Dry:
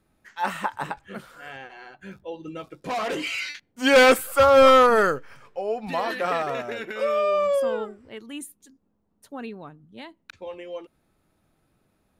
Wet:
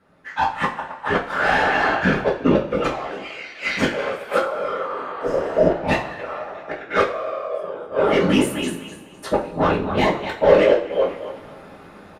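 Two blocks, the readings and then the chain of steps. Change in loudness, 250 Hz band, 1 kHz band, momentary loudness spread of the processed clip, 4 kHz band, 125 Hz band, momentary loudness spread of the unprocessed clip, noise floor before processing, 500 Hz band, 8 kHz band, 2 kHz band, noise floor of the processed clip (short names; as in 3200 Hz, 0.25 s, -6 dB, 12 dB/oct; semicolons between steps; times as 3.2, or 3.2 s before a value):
0.0 dB, +8.0 dB, +1.5 dB, 14 LU, 0.0 dB, +14.0 dB, 23 LU, -70 dBFS, +2.5 dB, -1.0 dB, +3.5 dB, -43 dBFS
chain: high shelf 7200 Hz -5.5 dB; thinning echo 0.25 s, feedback 26%, high-pass 330 Hz, level -12.5 dB; dynamic EQ 210 Hz, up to -4 dB, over -34 dBFS, Q 1.4; AGC gain up to 16 dB; flipped gate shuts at -10 dBFS, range -31 dB; overdrive pedal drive 25 dB, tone 1200 Hz, clips at -4.5 dBFS; whisperiser; two-slope reverb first 0.3 s, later 1.7 s, from -18 dB, DRR -3 dB; spectral repair 4.92–5.68, 690–4800 Hz both; downsampling 32000 Hz; gain -5.5 dB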